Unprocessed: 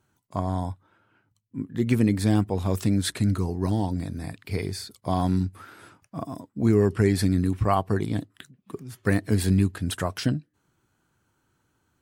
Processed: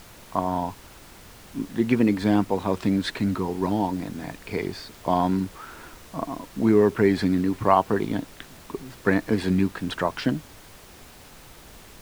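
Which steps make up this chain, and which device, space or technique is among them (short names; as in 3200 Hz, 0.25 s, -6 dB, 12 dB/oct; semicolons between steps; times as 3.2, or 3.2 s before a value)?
horn gramophone (BPF 210–3400 Hz; bell 940 Hz +6.5 dB 0.21 oct; wow and flutter; pink noise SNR 21 dB); gain +4 dB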